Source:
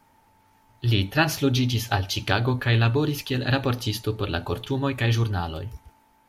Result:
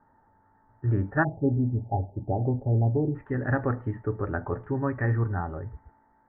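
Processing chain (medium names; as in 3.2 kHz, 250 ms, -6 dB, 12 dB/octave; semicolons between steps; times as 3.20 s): Chebyshev low-pass 1.8 kHz, order 6, from 1.23 s 820 Hz, from 3.14 s 1.9 kHz; trim -2 dB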